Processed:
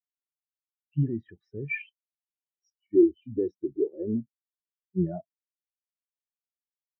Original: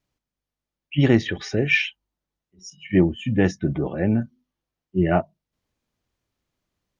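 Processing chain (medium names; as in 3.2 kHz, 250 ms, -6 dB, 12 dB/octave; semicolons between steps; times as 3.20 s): 1.87–4.21 s: fifteen-band graphic EQ 160 Hz -10 dB, 400 Hz +9 dB, 1.6 kHz -4 dB, 4 kHz +11 dB; peak limiter -12 dBFS, peak gain reduction 8 dB; spectral contrast expander 2.5:1; trim +1.5 dB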